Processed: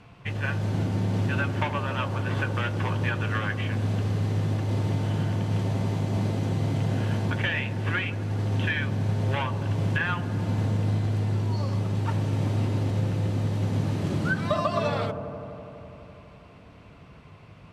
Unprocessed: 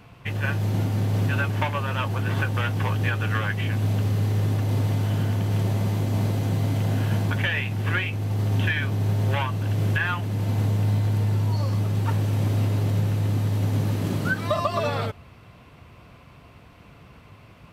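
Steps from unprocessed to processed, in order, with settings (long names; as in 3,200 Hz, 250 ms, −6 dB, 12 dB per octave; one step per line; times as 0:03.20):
Bessel low-pass filter 7,900 Hz, order 4
delay with a low-pass on its return 83 ms, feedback 85%, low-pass 730 Hz, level −8 dB
level −2 dB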